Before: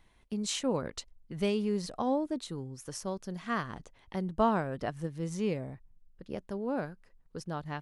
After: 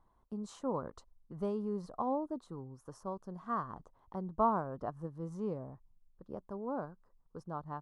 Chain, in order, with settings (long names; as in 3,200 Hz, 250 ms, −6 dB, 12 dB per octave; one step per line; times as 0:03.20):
high shelf with overshoot 1,600 Hz −12.5 dB, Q 3
level −6.5 dB